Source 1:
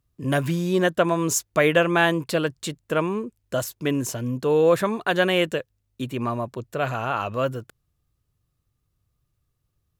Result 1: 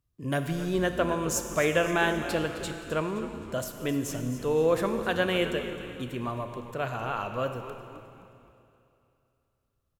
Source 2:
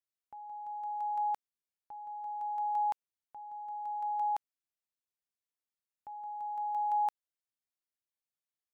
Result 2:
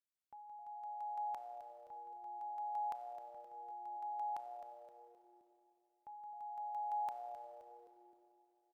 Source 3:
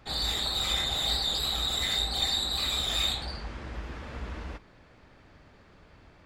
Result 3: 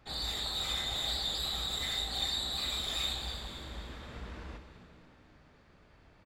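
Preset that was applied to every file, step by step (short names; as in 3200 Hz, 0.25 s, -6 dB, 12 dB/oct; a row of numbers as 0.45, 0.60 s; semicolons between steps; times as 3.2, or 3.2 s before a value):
frequency-shifting echo 0.261 s, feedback 45%, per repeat -120 Hz, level -13 dB; Schroeder reverb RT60 2.8 s, combs from 25 ms, DRR 7.5 dB; gain -6.5 dB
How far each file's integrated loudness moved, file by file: -6.0, -9.5, -6.0 LU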